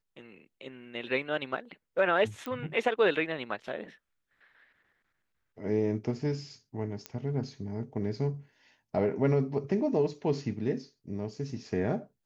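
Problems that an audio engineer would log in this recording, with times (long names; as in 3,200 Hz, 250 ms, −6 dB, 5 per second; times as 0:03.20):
0:02.46: click −23 dBFS
0:07.06: click −20 dBFS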